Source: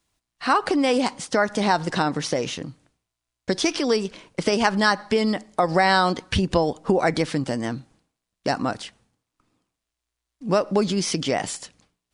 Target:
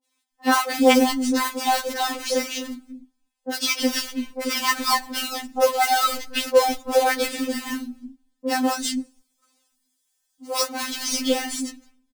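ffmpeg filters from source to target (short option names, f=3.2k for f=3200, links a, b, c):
-filter_complex "[0:a]asettb=1/sr,asplit=3[a][b][c];[a]atrim=end=8.674[d];[b]atrim=start=8.67:end=10.63,asetpts=PTS-STARTPTS,afade=t=in:d=0.004:c=qsin,afade=t=out:st=1.956:d=0.004:c=qsin,bass=f=250:g=-15,treble=f=4k:g=14[e];[c]atrim=start=10.626[f];[d][e]acrossfade=d=0.004:c1=hsin:c2=qsin[g];[g][f]acrossfade=d=0.004:c1=qsin:c2=hsin,acrusher=bits=2:mode=log:mix=0:aa=0.000001,acrossover=split=230|840[h][i][j];[j]adelay=40[k];[h]adelay=330[l];[l][i][k]amix=inputs=3:normalize=0,afftfilt=real='re*3.46*eq(mod(b,12),0)':imag='im*3.46*eq(mod(b,12),0)':win_size=2048:overlap=0.75,volume=4dB"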